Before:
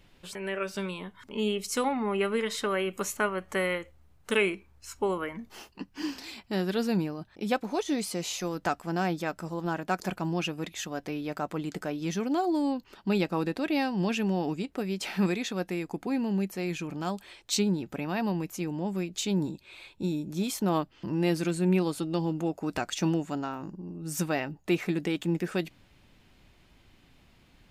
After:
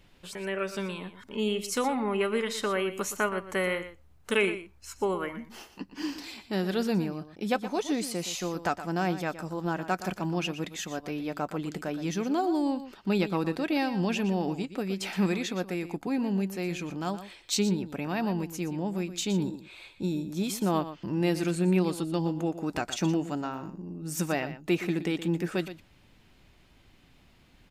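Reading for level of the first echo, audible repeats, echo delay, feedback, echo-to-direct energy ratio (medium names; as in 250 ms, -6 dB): -12.5 dB, 1, 119 ms, no regular repeats, -12.5 dB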